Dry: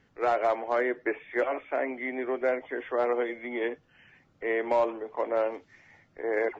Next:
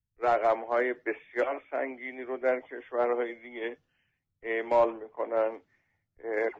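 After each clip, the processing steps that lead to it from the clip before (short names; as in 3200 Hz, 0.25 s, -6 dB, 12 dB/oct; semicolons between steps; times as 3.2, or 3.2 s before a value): three-band expander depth 100%; gain -1.5 dB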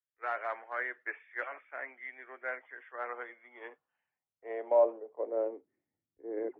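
band-pass sweep 1600 Hz -> 310 Hz, 3.01–5.91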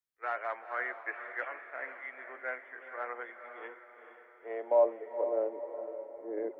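diffused feedback echo 0.465 s, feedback 47%, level -9 dB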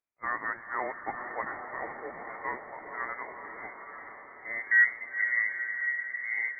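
inverted band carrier 2500 Hz; diffused feedback echo 0.913 s, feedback 40%, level -9 dB; gain +2.5 dB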